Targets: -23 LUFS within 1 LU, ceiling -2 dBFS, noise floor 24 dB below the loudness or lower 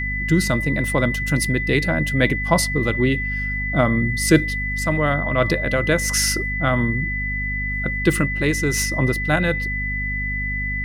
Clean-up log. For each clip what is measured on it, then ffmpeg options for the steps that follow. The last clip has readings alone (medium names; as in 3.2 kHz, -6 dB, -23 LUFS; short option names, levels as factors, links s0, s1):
hum 50 Hz; highest harmonic 250 Hz; hum level -25 dBFS; steady tone 2 kHz; tone level -24 dBFS; loudness -20.0 LUFS; peak level -2.5 dBFS; loudness target -23.0 LUFS
-> -af "bandreject=f=50:t=h:w=6,bandreject=f=100:t=h:w=6,bandreject=f=150:t=h:w=6,bandreject=f=200:t=h:w=6,bandreject=f=250:t=h:w=6"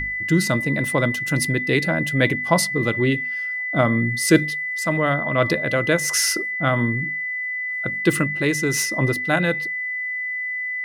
hum not found; steady tone 2 kHz; tone level -24 dBFS
-> -af "bandreject=f=2000:w=30"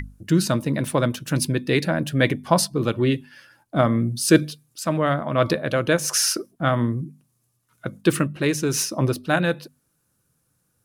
steady tone not found; loudness -22.0 LUFS; peak level -2.5 dBFS; loudness target -23.0 LUFS
-> -af "volume=0.891"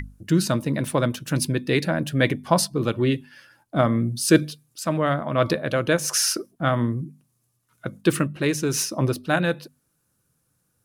loudness -23.0 LUFS; peak level -3.5 dBFS; noise floor -71 dBFS